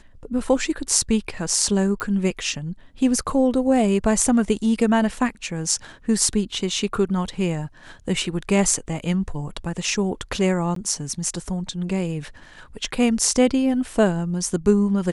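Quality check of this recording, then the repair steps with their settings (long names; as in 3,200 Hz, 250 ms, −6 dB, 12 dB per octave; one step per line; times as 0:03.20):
0:02.00: click −15 dBFS
0:10.75–0:10.76: drop-out 13 ms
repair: click removal
repair the gap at 0:10.75, 13 ms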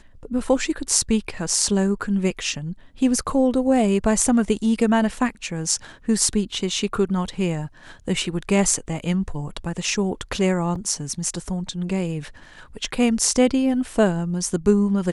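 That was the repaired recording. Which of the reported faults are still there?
0:02.00: click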